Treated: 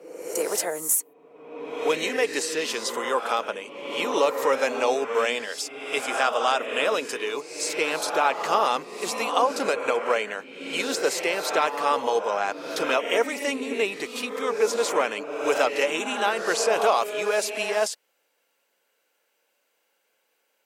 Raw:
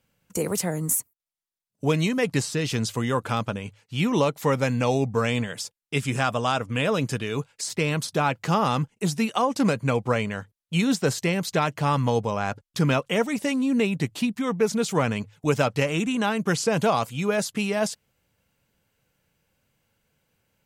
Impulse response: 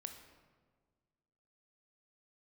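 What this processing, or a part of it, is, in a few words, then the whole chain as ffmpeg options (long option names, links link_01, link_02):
ghost voice: -filter_complex "[0:a]areverse[link_01];[1:a]atrim=start_sample=2205[link_02];[link_01][link_02]afir=irnorm=-1:irlink=0,areverse,highpass=frequency=380:width=0.5412,highpass=frequency=380:width=1.3066,volume=6.5dB"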